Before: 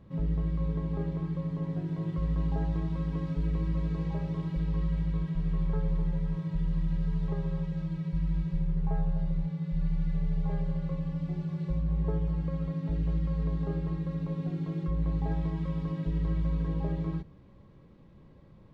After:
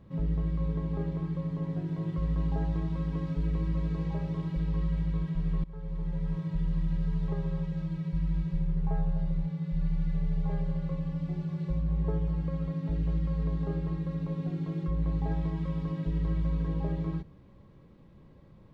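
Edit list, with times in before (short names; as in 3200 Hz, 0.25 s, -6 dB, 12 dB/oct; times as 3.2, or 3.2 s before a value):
5.64–6.32 fade in, from -21 dB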